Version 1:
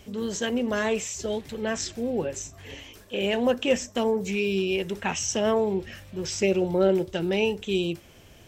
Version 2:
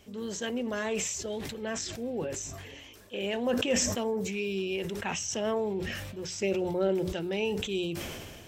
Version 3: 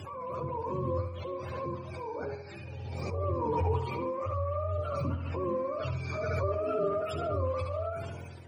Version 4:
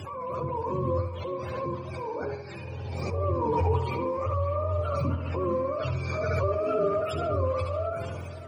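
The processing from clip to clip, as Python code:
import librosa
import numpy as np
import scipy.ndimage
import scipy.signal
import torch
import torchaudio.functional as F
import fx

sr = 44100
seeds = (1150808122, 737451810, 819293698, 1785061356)

y1 = fx.low_shelf(x, sr, hz=67.0, db=-6.0)
y1 = fx.hum_notches(y1, sr, base_hz=60, count=3)
y1 = fx.sustainer(y1, sr, db_per_s=30.0)
y1 = y1 * librosa.db_to_amplitude(-6.5)
y2 = fx.octave_mirror(y1, sr, pivot_hz=480.0)
y2 = fx.echo_tape(y2, sr, ms=71, feedback_pct=48, wet_db=-5.0, lp_hz=4400.0, drive_db=22.0, wow_cents=10)
y2 = fx.pre_swell(y2, sr, db_per_s=21.0)
y2 = y2 * librosa.db_to_amplitude(-2.5)
y3 = fx.echo_feedback(y2, sr, ms=566, feedback_pct=55, wet_db=-17.0)
y3 = y3 * librosa.db_to_amplitude(4.0)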